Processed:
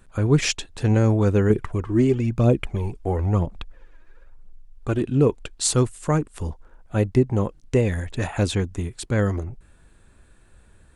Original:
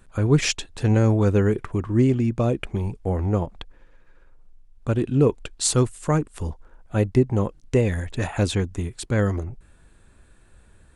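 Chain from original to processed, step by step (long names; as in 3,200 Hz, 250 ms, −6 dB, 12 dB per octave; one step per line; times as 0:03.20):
0:01.50–0:05.01: phase shifter 1 Hz, delay 3.3 ms, feedback 49%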